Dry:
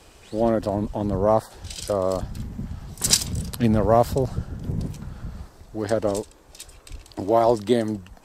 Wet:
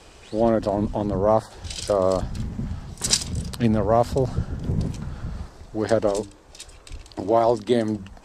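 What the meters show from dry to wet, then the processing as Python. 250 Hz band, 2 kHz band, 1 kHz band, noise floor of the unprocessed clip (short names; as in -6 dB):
+0.5 dB, +1.0 dB, 0.0 dB, -51 dBFS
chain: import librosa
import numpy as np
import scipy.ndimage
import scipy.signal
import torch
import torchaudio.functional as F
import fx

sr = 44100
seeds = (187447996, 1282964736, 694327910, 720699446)

y = fx.hum_notches(x, sr, base_hz=50, count=6)
y = fx.rider(y, sr, range_db=3, speed_s=0.5)
y = scipy.signal.sosfilt(scipy.signal.butter(2, 8400.0, 'lowpass', fs=sr, output='sos'), y)
y = y * 10.0 ** (1.0 / 20.0)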